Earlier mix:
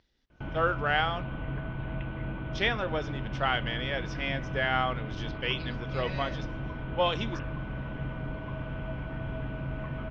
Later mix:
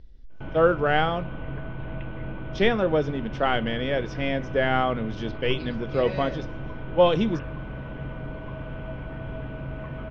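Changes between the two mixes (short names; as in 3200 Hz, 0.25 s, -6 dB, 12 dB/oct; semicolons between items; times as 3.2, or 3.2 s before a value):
speech: remove HPF 990 Hz 6 dB/oct; master: add bell 480 Hz +4.5 dB 0.81 oct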